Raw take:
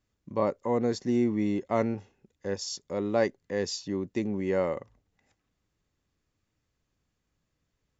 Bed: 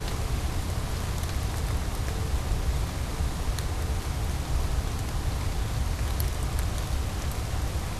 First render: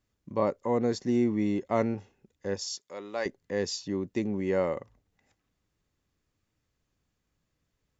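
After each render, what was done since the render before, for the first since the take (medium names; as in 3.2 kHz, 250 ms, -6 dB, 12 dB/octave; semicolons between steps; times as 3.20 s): 2.68–3.26 s: high-pass 1.3 kHz 6 dB/octave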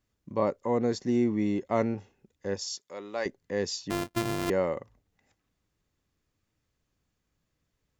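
3.90–4.50 s: sorted samples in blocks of 128 samples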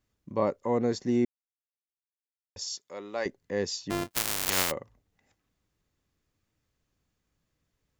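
1.25–2.56 s: mute; 4.10–4.70 s: spectral contrast reduction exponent 0.13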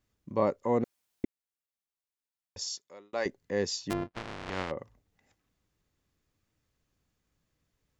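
0.84–1.24 s: room tone; 2.66–3.13 s: fade out; 3.93–4.79 s: tape spacing loss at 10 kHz 39 dB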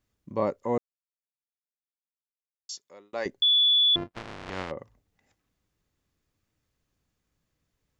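0.78–2.69 s: mute; 3.42–3.96 s: bleep 3.44 kHz -17.5 dBFS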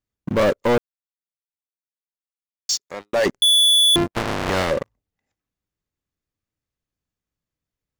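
waveshaping leveller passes 5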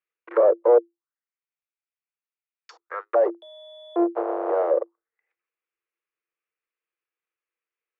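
rippled Chebyshev high-pass 330 Hz, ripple 9 dB; touch-sensitive low-pass 680–2500 Hz down, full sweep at -26 dBFS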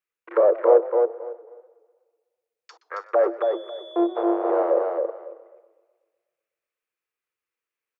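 feedback delay 273 ms, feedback 18%, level -4 dB; modulated delay 124 ms, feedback 58%, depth 121 cents, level -18.5 dB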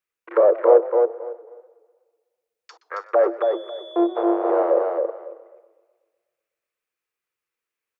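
trim +2 dB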